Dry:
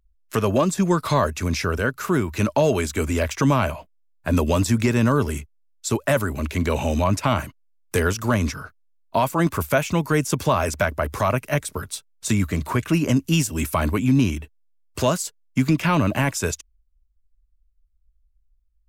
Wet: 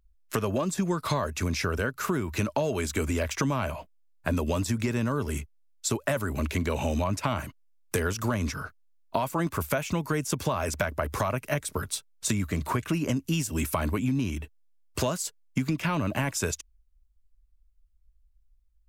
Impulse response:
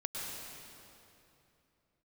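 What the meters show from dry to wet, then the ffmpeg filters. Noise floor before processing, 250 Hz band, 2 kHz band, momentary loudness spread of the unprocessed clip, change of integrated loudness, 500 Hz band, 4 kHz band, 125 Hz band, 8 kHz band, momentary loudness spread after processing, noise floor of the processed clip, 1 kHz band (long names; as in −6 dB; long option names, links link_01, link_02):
−63 dBFS, −7.5 dB, −6.5 dB, 8 LU, −7.0 dB, −7.5 dB, −5.0 dB, −7.0 dB, −3.5 dB, 6 LU, −63 dBFS, −7.0 dB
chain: -af "acompressor=threshold=-24dB:ratio=6"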